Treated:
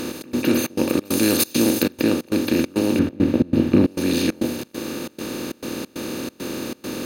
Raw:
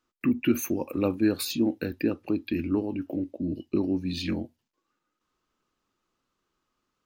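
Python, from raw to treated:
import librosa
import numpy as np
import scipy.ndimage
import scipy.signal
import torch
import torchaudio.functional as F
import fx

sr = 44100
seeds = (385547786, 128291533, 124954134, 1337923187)

y = fx.bin_compress(x, sr, power=0.2)
y = fx.high_shelf(y, sr, hz=4400.0, db=12.0, at=(1.05, 1.83))
y = fx.step_gate(y, sr, bpm=136, pattern='xx.xxx.xx.x', floor_db=-24.0, edge_ms=4.5)
y = fx.bass_treble(y, sr, bass_db=10, treble_db=-14, at=(2.99, 3.87))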